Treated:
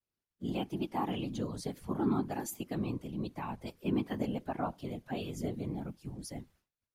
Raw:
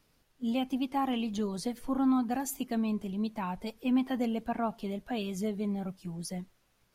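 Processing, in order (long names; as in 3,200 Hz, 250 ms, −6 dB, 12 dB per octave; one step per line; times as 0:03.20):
downward expander −56 dBFS
random phases in short frames
level −4.5 dB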